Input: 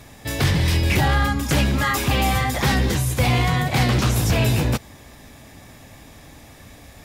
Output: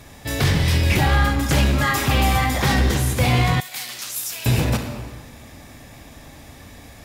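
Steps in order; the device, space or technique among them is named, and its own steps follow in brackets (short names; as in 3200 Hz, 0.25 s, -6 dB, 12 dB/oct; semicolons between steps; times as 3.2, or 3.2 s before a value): saturated reverb return (on a send at -3 dB: reverb RT60 1.4 s, pre-delay 26 ms + soft clip -18 dBFS, distortion -12 dB); 3.6–4.46 on the sum: differentiator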